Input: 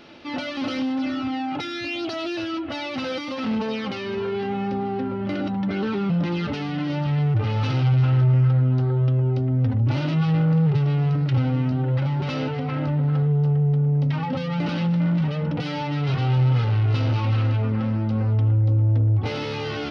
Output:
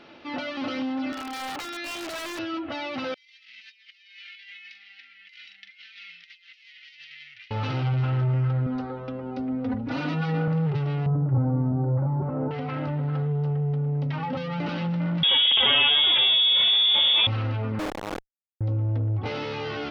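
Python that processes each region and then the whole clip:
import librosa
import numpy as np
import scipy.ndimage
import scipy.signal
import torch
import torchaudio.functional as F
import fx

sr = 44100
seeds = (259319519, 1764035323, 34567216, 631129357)

y = fx.chain(x, sr, fx.highpass(hz=370.0, slope=12),
    fx.overflow_wrap(gain_db=24.5), at=(1.12, 2.39))
y = fx.chain(y, sr, fx.ellip_highpass(hz=2000.0, order=4, stop_db=50),
    fx.doubler(ms=42.0, db=-8.5),
    fx.over_compress(threshold_db=-45.0, ratio=-0.5), at=(3.14, 7.51))
y = fx.chain(y, sr, fx.peak_eq(hz=3100.0, db=-4.5, octaves=0.28),
    fx.comb(ms=4.1, depth=0.92), at=(8.66, 10.48))
y = fx.chain(y, sr, fx.lowpass(hz=1100.0, slope=24),
    fx.low_shelf(hz=250.0, db=5.5), at=(11.06, 12.51))
y = fx.chain(y, sr, fx.peak_eq(hz=2000.0, db=-3.5, octaves=0.3),
    fx.freq_invert(carrier_hz=3500),
    fx.env_flatten(amount_pct=100), at=(15.23, 17.27))
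y = fx.chain(y, sr, fx.high_shelf(hz=2700.0, db=-9.5),
    fx.robotise(hz=310.0),
    fx.schmitt(flips_db=-42.5), at=(17.79, 18.61))
y = fx.lowpass(y, sr, hz=2900.0, slope=6)
y = fx.low_shelf(y, sr, hz=300.0, db=-7.5)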